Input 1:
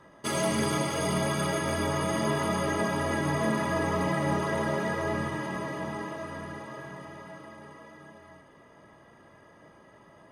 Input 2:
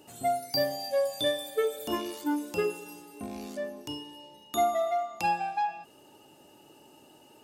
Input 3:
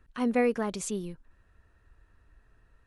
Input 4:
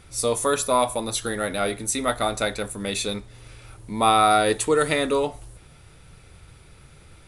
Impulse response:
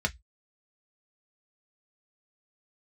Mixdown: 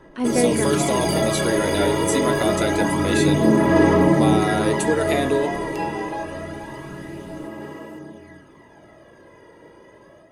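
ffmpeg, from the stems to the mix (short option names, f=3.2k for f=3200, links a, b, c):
-filter_complex "[0:a]dynaudnorm=f=460:g=3:m=6dB,aphaser=in_gain=1:out_gain=1:delay=2.1:decay=0.47:speed=0.26:type=sinusoidal,volume=-1.5dB[a];[1:a]acompressor=mode=upward:threshold=-41dB:ratio=2.5,adelay=550,volume=-4dB[b];[2:a]acontrast=86,volume=-5dB[c];[3:a]acompressor=threshold=-22dB:ratio=6,adelay=200,volume=0dB[d];[a][b][c][d]amix=inputs=4:normalize=0,equalizer=f=340:t=o:w=0.72:g=9,bandreject=f=1.2k:w=6.9"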